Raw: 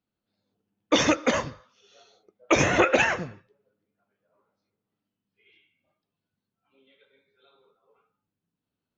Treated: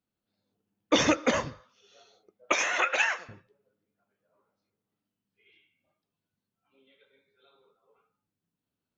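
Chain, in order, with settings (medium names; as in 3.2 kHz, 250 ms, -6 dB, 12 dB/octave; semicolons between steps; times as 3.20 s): 2.52–3.29 s: high-pass 970 Hz 12 dB/octave; trim -2 dB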